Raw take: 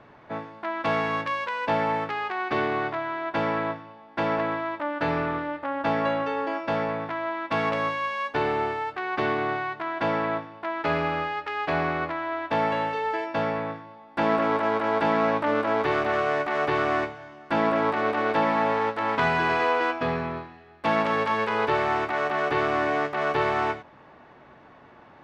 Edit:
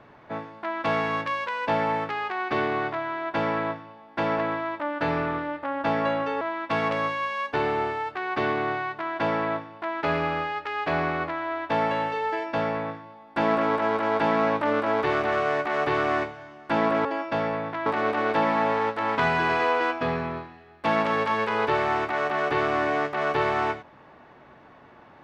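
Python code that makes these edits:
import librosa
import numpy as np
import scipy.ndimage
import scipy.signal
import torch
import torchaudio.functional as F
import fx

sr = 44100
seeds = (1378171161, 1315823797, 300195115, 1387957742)

y = fx.edit(x, sr, fx.move(start_s=6.41, length_s=0.81, to_s=17.86), tone=tone)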